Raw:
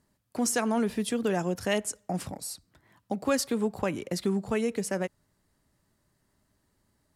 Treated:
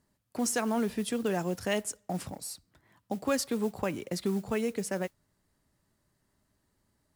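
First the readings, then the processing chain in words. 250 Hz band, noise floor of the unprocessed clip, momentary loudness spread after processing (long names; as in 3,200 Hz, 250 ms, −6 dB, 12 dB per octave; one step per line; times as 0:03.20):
−2.5 dB, −73 dBFS, 10 LU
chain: noise that follows the level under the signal 24 dB
level −2.5 dB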